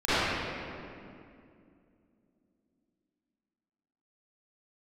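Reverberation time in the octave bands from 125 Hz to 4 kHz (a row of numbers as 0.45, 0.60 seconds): 3.0, 3.7, 2.7, 2.3, 2.1, 1.6 seconds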